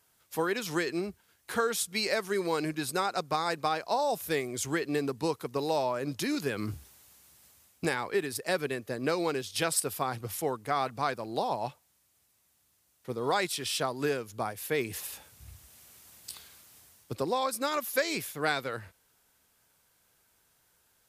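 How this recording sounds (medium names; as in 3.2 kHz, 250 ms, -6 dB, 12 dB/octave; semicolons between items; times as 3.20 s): noise floor -70 dBFS; spectral tilt -4.0 dB/octave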